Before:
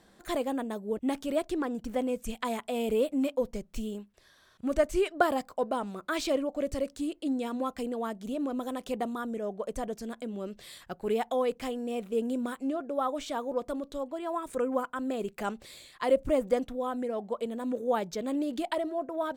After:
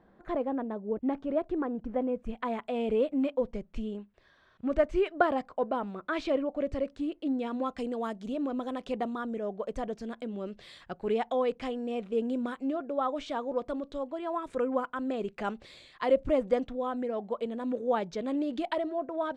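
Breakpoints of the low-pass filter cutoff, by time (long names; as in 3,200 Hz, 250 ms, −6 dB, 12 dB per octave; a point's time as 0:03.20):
0:02.22 1,400 Hz
0:02.68 2,700 Hz
0:07.29 2,700 Hz
0:08.06 7,000 Hz
0:08.39 4,100 Hz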